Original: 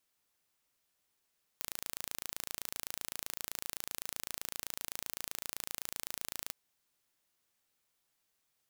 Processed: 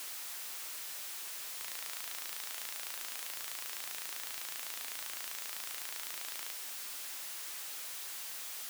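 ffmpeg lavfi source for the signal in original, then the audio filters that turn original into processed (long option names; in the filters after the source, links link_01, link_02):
-f lavfi -i "aevalsrc='0.282*eq(mod(n,1586),0)':duration=4.91:sample_rate=44100"
-filter_complex "[0:a]aeval=exprs='val(0)+0.5*0.015*sgn(val(0))':channel_layout=same,highpass=frequency=1000:poles=1,acrossover=split=2200[link_01][link_02];[link_02]aeval=exprs='(mod(10.6*val(0)+1,2)-1)/10.6':channel_layout=same[link_03];[link_01][link_03]amix=inputs=2:normalize=0"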